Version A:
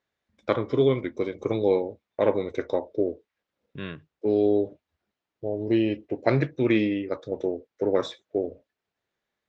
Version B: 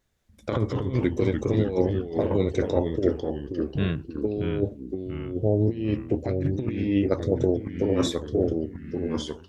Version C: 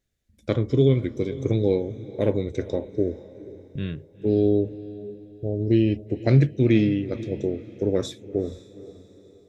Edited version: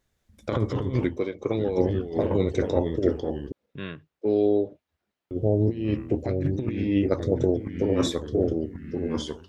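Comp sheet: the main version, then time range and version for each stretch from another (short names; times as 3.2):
B
1.12–1.64 from A, crossfade 0.24 s
3.52–5.31 from A
not used: C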